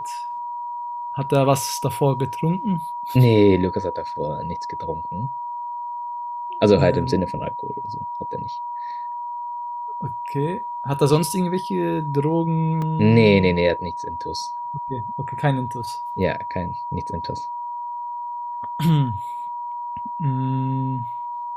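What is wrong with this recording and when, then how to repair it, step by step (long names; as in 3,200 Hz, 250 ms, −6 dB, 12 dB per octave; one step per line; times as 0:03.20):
whistle 960 Hz −27 dBFS
0:12.82: drop-out 2.4 ms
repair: notch filter 960 Hz, Q 30
repair the gap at 0:12.82, 2.4 ms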